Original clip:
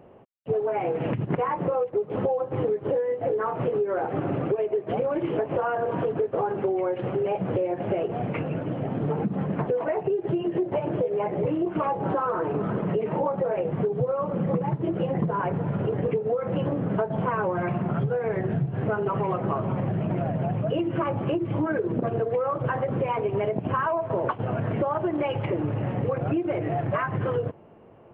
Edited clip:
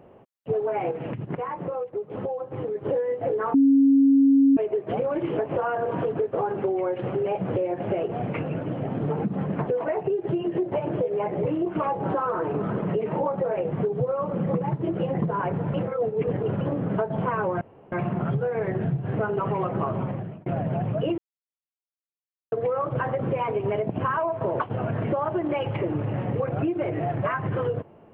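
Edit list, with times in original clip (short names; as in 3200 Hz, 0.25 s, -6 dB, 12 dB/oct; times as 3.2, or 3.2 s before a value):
0.91–2.75 gain -5 dB
3.54–4.57 bleep 274 Hz -13.5 dBFS
15.74–16.61 reverse
17.61 insert room tone 0.31 s
19.67–20.15 fade out
20.87–22.21 mute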